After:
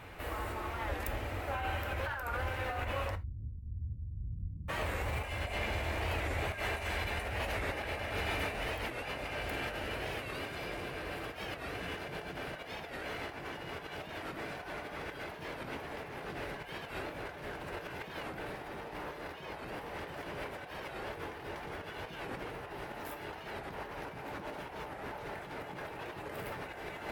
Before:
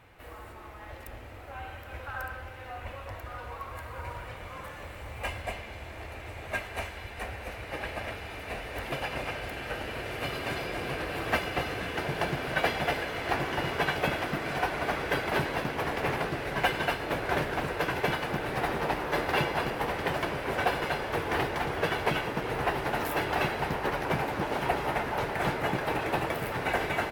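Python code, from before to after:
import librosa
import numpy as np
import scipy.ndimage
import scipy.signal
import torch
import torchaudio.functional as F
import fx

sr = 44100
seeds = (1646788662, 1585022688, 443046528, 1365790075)

p1 = 10.0 ** (-29.0 / 20.0) * np.tanh(x / 10.0 ** (-29.0 / 20.0))
p2 = x + (p1 * 10.0 ** (-7.0 / 20.0))
p3 = fx.over_compress(p2, sr, threshold_db=-38.0, ratio=-1.0)
p4 = fx.cheby2_lowpass(p3, sr, hz=650.0, order=4, stop_db=60, at=(3.14, 4.68), fade=0.02)
p5 = fx.rev_gated(p4, sr, seeds[0], gate_ms=100, shape='falling', drr_db=10.0)
p6 = fx.record_warp(p5, sr, rpm=45.0, depth_cents=160.0)
y = p6 * 10.0 ** (-3.0 / 20.0)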